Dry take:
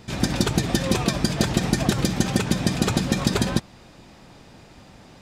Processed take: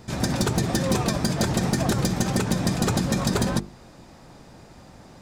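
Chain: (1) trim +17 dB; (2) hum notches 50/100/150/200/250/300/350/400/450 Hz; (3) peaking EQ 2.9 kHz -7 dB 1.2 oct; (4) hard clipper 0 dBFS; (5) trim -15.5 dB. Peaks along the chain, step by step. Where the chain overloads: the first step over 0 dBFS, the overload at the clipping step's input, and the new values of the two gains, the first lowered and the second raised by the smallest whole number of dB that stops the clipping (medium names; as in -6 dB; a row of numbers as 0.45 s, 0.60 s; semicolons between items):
+11.5 dBFS, +10.0 dBFS, +9.5 dBFS, 0.0 dBFS, -15.5 dBFS; step 1, 9.5 dB; step 1 +7 dB, step 5 -5.5 dB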